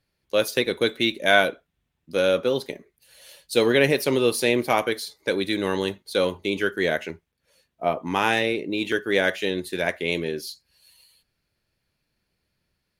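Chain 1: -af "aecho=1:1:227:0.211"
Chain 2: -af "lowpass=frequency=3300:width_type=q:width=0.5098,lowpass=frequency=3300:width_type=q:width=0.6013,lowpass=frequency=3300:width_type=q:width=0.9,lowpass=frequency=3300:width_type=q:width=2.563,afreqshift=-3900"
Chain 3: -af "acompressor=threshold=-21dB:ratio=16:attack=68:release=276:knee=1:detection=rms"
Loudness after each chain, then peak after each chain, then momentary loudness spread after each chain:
−23.5, −21.0, −26.0 LKFS; −2.5, −4.5, −6.0 dBFS; 11, 9, 7 LU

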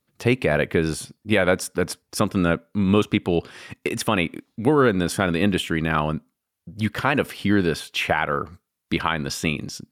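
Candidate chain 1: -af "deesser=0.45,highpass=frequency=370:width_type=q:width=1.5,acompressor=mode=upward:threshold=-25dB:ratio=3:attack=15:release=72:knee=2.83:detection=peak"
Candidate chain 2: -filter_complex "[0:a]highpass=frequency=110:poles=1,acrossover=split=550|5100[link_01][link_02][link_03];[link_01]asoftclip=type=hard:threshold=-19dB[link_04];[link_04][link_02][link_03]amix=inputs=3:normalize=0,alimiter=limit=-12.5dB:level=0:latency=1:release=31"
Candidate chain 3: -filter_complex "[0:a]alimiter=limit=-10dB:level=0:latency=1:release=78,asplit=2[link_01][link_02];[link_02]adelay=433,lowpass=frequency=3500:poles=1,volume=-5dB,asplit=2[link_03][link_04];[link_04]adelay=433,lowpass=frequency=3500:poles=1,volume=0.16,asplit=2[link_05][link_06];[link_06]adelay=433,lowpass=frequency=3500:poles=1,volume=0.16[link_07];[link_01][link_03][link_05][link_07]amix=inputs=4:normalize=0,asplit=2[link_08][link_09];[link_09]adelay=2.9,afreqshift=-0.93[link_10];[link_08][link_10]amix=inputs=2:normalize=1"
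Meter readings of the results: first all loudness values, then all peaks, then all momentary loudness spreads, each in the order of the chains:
−22.0, −26.0, −26.5 LKFS; −2.0, −12.5, −11.0 dBFS; 10, 7, 8 LU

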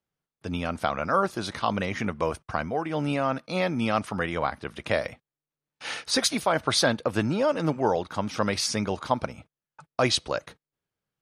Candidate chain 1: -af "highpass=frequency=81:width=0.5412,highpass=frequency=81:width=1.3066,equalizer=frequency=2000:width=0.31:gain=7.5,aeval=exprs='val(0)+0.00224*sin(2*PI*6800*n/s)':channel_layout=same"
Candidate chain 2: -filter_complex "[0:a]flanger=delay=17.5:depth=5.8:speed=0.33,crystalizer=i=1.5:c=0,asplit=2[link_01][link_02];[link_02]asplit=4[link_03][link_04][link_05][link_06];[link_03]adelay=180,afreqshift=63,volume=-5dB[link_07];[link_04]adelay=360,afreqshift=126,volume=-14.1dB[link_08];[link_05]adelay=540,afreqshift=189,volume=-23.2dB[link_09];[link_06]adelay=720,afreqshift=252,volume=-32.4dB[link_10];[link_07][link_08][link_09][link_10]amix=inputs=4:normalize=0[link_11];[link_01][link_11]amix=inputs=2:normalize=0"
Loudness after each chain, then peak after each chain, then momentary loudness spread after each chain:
−22.5, −27.5 LKFS; −3.0, −8.5 dBFS; 9, 14 LU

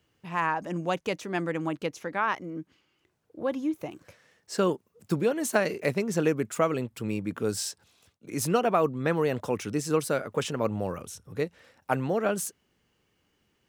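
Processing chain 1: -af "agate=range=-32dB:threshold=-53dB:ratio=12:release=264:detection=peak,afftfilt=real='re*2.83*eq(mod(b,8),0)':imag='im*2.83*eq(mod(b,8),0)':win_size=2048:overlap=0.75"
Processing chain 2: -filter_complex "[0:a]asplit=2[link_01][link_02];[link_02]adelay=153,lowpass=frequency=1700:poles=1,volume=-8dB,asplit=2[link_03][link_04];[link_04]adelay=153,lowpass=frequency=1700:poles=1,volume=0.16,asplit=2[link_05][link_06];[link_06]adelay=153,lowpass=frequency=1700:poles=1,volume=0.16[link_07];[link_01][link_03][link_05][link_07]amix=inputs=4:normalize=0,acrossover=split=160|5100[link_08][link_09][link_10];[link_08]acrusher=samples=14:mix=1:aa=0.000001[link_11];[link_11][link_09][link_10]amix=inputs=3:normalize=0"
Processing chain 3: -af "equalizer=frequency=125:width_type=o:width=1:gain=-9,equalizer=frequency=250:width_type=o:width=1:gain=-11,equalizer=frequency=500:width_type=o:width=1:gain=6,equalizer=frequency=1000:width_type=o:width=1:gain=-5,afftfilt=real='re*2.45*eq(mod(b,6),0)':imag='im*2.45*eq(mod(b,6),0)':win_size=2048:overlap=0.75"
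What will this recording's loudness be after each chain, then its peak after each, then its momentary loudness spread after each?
−32.0, −29.0, −33.0 LKFS; −9.5, −8.5, −10.5 dBFS; 13, 10, 15 LU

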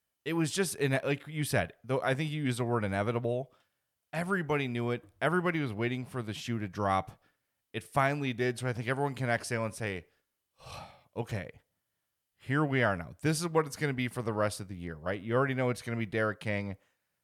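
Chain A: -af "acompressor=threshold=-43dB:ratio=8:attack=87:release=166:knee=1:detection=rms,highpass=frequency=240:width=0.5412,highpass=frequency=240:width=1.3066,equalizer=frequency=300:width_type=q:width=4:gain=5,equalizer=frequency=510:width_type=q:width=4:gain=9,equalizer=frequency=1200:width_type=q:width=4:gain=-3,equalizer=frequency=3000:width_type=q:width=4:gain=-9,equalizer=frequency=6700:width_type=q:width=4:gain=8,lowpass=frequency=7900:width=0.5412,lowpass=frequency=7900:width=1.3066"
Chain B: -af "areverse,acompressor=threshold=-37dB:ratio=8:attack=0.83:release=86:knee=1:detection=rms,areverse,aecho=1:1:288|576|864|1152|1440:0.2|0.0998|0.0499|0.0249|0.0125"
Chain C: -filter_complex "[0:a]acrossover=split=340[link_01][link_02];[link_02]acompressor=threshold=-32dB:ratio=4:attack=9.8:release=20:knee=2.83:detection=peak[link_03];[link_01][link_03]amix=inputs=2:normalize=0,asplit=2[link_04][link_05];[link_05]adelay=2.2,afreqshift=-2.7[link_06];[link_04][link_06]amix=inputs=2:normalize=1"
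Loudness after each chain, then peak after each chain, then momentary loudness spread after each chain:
−42.5, −44.0, −36.5 LKFS; −22.5, −31.0, −20.0 dBFS; 7, 9, 9 LU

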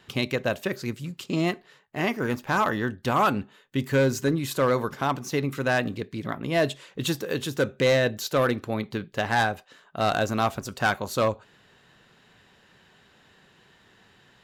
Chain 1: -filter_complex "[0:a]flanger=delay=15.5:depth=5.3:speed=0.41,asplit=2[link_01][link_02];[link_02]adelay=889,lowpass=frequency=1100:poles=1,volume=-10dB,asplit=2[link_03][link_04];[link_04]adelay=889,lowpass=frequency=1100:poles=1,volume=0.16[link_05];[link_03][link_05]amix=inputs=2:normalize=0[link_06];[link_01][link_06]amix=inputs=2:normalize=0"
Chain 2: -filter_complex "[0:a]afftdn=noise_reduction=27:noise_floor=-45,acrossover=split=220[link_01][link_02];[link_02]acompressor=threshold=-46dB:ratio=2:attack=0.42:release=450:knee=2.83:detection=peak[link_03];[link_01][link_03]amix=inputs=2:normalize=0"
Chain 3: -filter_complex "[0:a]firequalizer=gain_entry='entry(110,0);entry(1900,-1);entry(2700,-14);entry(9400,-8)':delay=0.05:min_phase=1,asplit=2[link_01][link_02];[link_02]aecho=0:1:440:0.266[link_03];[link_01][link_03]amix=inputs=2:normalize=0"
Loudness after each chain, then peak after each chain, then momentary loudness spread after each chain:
−29.0, −35.0, −27.0 LKFS; −13.5, −18.0, −12.5 dBFS; 11, 6, 9 LU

